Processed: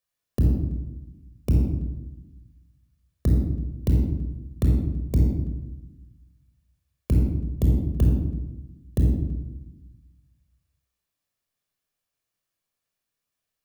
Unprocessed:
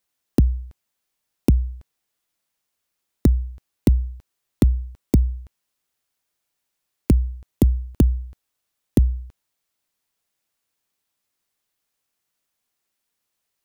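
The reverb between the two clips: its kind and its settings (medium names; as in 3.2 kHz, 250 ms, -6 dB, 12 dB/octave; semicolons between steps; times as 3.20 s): simulated room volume 4000 m³, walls furnished, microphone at 5.8 m; trim -9.5 dB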